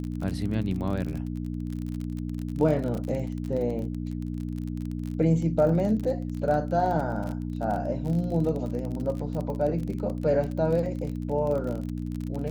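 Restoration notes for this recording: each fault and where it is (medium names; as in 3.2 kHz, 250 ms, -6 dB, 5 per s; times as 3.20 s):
crackle 32 per s -31 dBFS
hum 60 Hz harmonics 5 -32 dBFS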